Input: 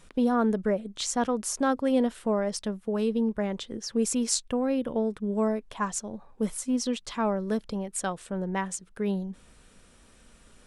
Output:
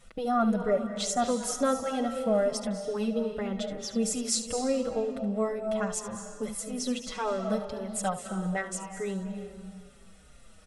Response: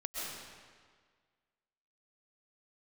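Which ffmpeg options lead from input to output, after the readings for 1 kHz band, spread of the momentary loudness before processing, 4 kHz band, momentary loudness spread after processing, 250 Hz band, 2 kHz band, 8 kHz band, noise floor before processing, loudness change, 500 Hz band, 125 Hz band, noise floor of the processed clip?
0.0 dB, 8 LU, -0.5 dB, 9 LU, -3.5 dB, -1.0 dB, -0.5 dB, -57 dBFS, -1.5 dB, 0.0 dB, -1.5 dB, -53 dBFS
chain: -filter_complex "[0:a]aecho=1:1:1.5:0.45,asplit=2[a][b];[1:a]atrim=start_sample=2205,adelay=72[c];[b][c]afir=irnorm=-1:irlink=0,volume=-9dB[d];[a][d]amix=inputs=2:normalize=0,asplit=2[e][f];[f]adelay=5.4,afreqshift=-2.3[g];[e][g]amix=inputs=2:normalize=1,volume=1dB"

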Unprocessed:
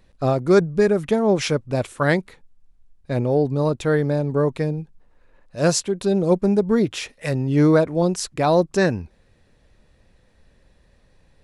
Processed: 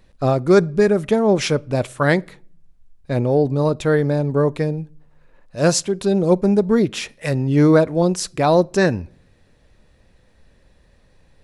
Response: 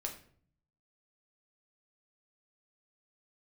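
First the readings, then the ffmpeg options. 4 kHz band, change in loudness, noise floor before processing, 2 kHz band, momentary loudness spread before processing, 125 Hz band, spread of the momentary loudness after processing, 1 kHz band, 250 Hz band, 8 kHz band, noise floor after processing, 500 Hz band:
+2.5 dB, +2.5 dB, -59 dBFS, +2.5 dB, 9 LU, +2.5 dB, 9 LU, +2.5 dB, +2.5 dB, +2.5 dB, -56 dBFS, +2.0 dB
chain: -filter_complex "[0:a]asplit=2[a][b];[1:a]atrim=start_sample=2205[c];[b][c]afir=irnorm=-1:irlink=0,volume=-18dB[d];[a][d]amix=inputs=2:normalize=0,volume=1.5dB"

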